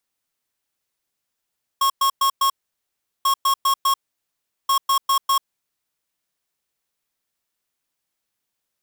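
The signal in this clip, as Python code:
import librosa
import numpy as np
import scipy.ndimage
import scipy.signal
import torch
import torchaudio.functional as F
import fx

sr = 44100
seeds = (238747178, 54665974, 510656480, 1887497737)

y = fx.beep_pattern(sr, wave='square', hz=1090.0, on_s=0.09, off_s=0.11, beeps=4, pause_s=0.75, groups=3, level_db=-17.5)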